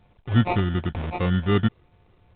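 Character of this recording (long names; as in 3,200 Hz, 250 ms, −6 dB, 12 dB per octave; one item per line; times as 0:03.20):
a buzz of ramps at a fixed pitch in blocks of 8 samples
phaser sweep stages 6, 2.7 Hz, lowest notch 540–1,200 Hz
aliases and images of a low sample rate 1,600 Hz, jitter 0%
A-law companding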